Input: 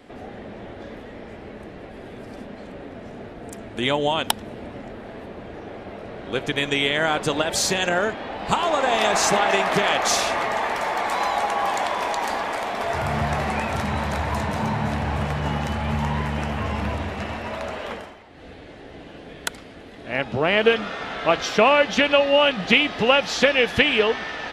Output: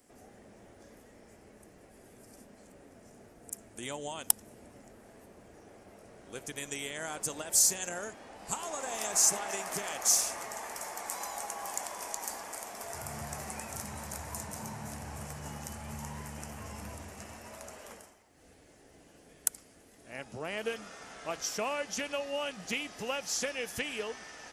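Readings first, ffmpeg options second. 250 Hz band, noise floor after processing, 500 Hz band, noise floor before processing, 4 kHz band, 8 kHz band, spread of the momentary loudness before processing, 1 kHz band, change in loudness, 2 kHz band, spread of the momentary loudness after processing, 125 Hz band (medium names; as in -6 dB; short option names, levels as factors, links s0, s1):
-18.0 dB, -59 dBFS, -18.0 dB, -42 dBFS, -15.5 dB, +1.0 dB, 20 LU, -18.0 dB, -12.0 dB, -18.0 dB, 19 LU, -18.0 dB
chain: -af "aexciter=amount=13.1:drive=3.6:freq=5500,volume=0.126"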